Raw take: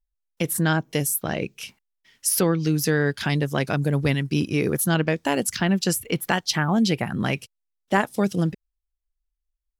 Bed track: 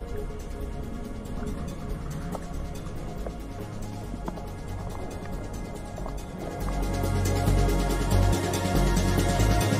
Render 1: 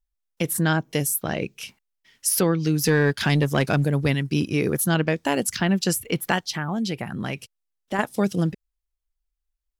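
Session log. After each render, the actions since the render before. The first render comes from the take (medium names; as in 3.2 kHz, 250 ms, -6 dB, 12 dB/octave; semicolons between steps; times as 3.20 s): 2.84–3.85 s: waveshaping leveller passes 1; 6.44–7.99 s: compression 1.5:1, threshold -33 dBFS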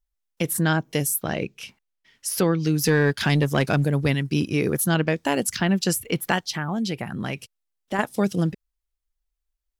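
1.43–2.39 s: treble shelf 6.2 kHz -8 dB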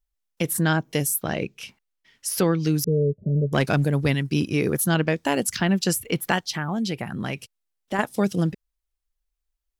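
2.84–3.53 s: rippled Chebyshev low-pass 620 Hz, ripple 9 dB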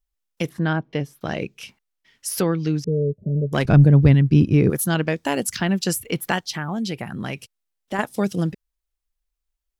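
0.49–1.21 s: distance through air 280 m; 2.42–3.11 s: distance through air 130 m; 3.65–4.70 s: RIAA curve playback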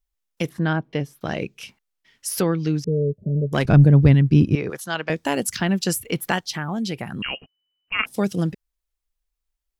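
4.55–5.10 s: three-band isolator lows -15 dB, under 510 Hz, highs -18 dB, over 7.1 kHz; 7.22–8.06 s: frequency inversion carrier 3 kHz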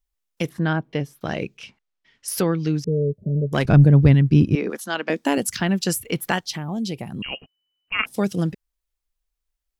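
1.57–2.28 s: distance through air 83 m; 4.55–5.38 s: resonant low shelf 170 Hz -9.5 dB, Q 3; 6.56–7.32 s: peaking EQ 1.5 kHz -13.5 dB 0.95 oct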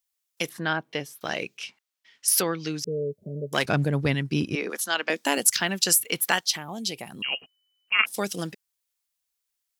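high-pass 680 Hz 6 dB/octave; treble shelf 3.2 kHz +8 dB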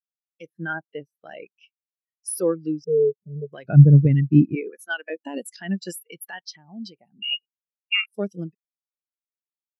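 loudness maximiser +13.5 dB; spectral contrast expander 2.5:1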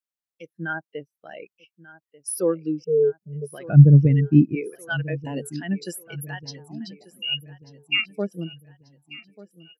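feedback delay 1189 ms, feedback 45%, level -18.5 dB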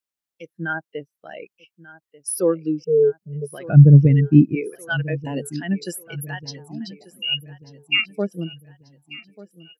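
trim +3 dB; peak limiter -1 dBFS, peak gain reduction 3 dB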